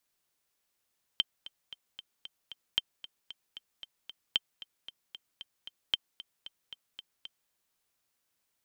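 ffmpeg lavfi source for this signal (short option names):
-f lavfi -i "aevalsrc='pow(10,(-12.5-17.5*gte(mod(t,6*60/228),60/228))/20)*sin(2*PI*3130*mod(t,60/228))*exp(-6.91*mod(t,60/228)/0.03)':d=6.31:s=44100"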